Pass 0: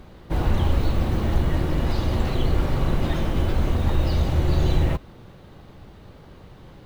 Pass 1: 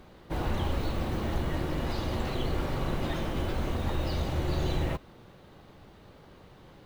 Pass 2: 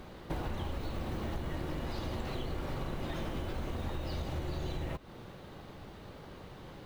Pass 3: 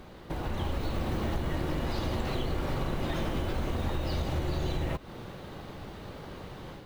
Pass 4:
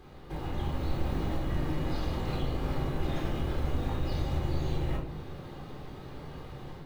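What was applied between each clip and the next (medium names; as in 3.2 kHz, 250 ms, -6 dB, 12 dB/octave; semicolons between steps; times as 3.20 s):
bass shelf 170 Hz -7.5 dB; trim -4 dB
compression 10:1, threshold -37 dBFS, peak gain reduction 14 dB; trim +4 dB
level rider gain up to 6 dB
simulated room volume 980 m³, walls furnished, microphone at 3.9 m; trim -8 dB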